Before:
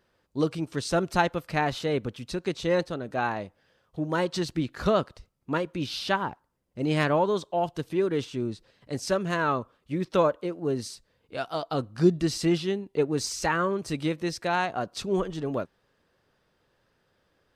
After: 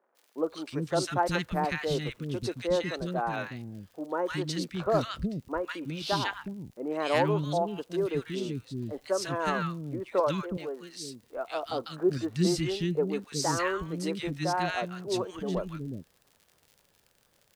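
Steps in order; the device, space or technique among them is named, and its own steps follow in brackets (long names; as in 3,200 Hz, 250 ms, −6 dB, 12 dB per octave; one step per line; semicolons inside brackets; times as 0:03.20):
0:10.20–0:10.86: meter weighting curve A
vinyl LP (tape wow and flutter; surface crackle 79 per second −43 dBFS; white noise bed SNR 45 dB)
three-band delay without the direct sound mids, highs, lows 150/370 ms, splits 300/1,400 Hz
level −1 dB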